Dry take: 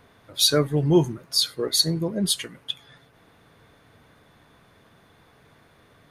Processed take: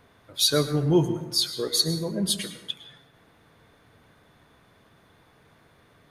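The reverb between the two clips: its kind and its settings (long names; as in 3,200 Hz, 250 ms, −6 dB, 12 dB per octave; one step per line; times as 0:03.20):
dense smooth reverb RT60 0.98 s, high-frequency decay 0.6×, pre-delay 95 ms, DRR 10 dB
level −2.5 dB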